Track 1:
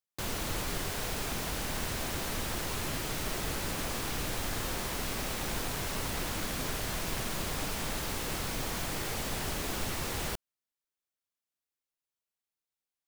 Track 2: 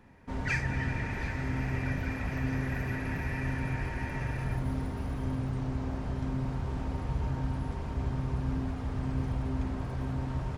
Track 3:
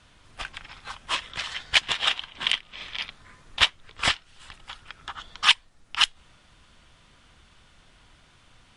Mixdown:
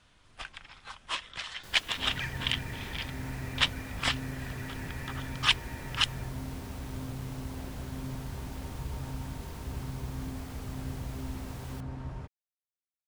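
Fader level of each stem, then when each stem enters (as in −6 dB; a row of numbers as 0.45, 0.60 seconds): −14.5, −6.0, −6.5 decibels; 1.45, 1.70, 0.00 seconds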